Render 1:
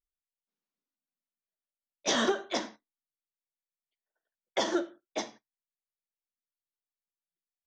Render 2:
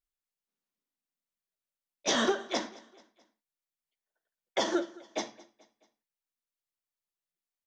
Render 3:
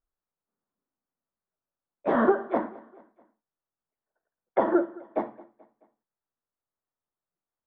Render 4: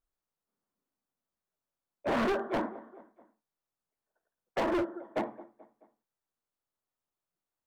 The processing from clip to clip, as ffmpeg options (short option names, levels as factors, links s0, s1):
-af "aecho=1:1:216|432|648:0.0794|0.0389|0.0191"
-af "lowpass=f=1400:w=0.5412,lowpass=f=1400:w=1.3066,volume=2.24"
-af "asoftclip=type=hard:threshold=0.0473"